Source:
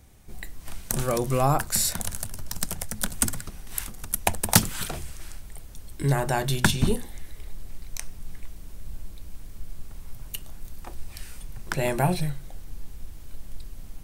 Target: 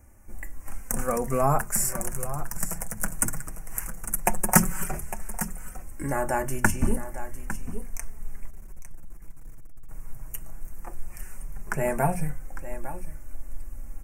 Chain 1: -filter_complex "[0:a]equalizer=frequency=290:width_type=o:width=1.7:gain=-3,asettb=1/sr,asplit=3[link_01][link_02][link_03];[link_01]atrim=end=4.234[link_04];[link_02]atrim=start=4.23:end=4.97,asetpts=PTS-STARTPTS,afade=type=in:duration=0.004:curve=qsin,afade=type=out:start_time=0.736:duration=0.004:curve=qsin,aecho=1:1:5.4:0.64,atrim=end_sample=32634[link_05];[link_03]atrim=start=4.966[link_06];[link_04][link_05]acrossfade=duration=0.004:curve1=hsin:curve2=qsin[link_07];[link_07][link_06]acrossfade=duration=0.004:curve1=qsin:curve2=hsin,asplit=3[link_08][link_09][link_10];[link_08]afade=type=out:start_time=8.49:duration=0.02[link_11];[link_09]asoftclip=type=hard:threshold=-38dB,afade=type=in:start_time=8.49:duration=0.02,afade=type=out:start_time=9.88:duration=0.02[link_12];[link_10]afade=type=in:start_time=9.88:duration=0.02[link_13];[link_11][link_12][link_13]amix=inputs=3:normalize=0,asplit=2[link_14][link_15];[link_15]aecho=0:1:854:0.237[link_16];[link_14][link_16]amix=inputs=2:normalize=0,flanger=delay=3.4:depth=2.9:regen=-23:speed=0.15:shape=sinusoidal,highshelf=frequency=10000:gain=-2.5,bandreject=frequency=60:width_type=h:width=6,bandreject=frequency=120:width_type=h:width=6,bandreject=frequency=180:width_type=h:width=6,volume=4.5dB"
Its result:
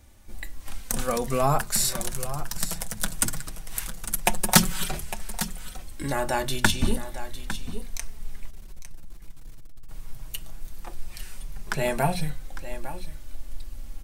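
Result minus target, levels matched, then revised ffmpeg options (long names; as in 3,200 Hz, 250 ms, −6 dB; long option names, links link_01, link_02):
4,000 Hz band +15.0 dB
-filter_complex "[0:a]asuperstop=centerf=3800:order=4:qfactor=0.83,equalizer=frequency=290:width_type=o:width=1.7:gain=-3,asettb=1/sr,asplit=3[link_01][link_02][link_03];[link_01]atrim=end=4.234[link_04];[link_02]atrim=start=4.23:end=4.97,asetpts=PTS-STARTPTS,afade=type=in:duration=0.004:curve=qsin,afade=type=out:start_time=0.736:duration=0.004:curve=qsin,aecho=1:1:5.4:0.64,atrim=end_sample=32634[link_05];[link_03]atrim=start=4.966[link_06];[link_04][link_05]acrossfade=duration=0.004:curve1=hsin:curve2=qsin[link_07];[link_07][link_06]acrossfade=duration=0.004:curve1=qsin:curve2=hsin,asplit=3[link_08][link_09][link_10];[link_08]afade=type=out:start_time=8.49:duration=0.02[link_11];[link_09]asoftclip=type=hard:threshold=-38dB,afade=type=in:start_time=8.49:duration=0.02,afade=type=out:start_time=9.88:duration=0.02[link_12];[link_10]afade=type=in:start_time=9.88:duration=0.02[link_13];[link_11][link_12][link_13]amix=inputs=3:normalize=0,asplit=2[link_14][link_15];[link_15]aecho=0:1:854:0.237[link_16];[link_14][link_16]amix=inputs=2:normalize=0,flanger=delay=3.4:depth=2.9:regen=-23:speed=0.15:shape=sinusoidal,highshelf=frequency=10000:gain=-2.5,bandreject=frequency=60:width_type=h:width=6,bandreject=frequency=120:width_type=h:width=6,bandreject=frequency=180:width_type=h:width=6,volume=4.5dB"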